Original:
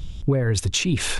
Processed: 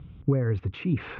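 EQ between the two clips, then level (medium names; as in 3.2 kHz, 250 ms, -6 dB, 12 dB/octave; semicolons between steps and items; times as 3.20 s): distance through air 99 m; cabinet simulation 120–2000 Hz, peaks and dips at 210 Hz -5 dB, 360 Hz -5 dB, 610 Hz -10 dB, 890 Hz -7 dB, 1.7 kHz -9 dB; 0.0 dB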